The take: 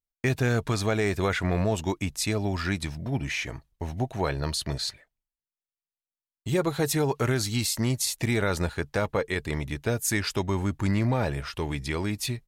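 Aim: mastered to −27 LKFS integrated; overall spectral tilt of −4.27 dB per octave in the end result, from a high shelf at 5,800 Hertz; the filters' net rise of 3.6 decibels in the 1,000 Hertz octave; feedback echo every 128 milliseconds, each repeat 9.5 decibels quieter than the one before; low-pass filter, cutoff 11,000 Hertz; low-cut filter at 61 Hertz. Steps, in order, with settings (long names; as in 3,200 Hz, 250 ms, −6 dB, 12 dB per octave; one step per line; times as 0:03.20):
high-pass filter 61 Hz
low-pass filter 11,000 Hz
parametric band 1,000 Hz +4.5 dB
high-shelf EQ 5,800 Hz +5.5 dB
repeating echo 128 ms, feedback 33%, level −9.5 dB
level −0.5 dB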